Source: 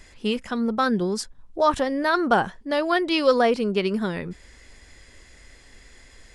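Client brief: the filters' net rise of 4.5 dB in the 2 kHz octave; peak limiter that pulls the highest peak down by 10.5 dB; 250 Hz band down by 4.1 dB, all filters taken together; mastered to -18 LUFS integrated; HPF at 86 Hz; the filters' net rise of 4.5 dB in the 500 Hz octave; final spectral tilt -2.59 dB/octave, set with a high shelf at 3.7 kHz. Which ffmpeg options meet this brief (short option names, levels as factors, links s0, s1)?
-af "highpass=86,equalizer=f=250:t=o:g=-8,equalizer=f=500:t=o:g=7,equalizer=f=2000:t=o:g=8,highshelf=f=3700:g=-9,volume=2,alimiter=limit=0.447:level=0:latency=1"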